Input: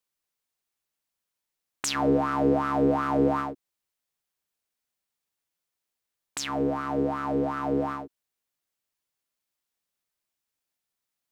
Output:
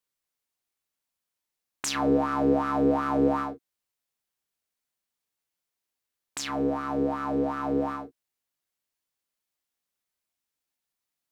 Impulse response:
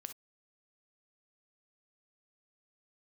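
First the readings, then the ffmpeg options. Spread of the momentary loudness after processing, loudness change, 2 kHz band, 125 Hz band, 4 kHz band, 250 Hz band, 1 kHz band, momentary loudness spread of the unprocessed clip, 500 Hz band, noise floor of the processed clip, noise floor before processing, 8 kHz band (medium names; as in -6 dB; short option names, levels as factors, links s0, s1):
12 LU, -0.5 dB, -1.5 dB, -3.0 dB, -1.0 dB, +0.5 dB, -1.0 dB, 9 LU, -0.5 dB, under -85 dBFS, under -85 dBFS, -1.0 dB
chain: -filter_complex "[1:a]atrim=start_sample=2205,asetrate=79380,aresample=44100[s0];[0:a][s0]afir=irnorm=-1:irlink=0,volume=2.66"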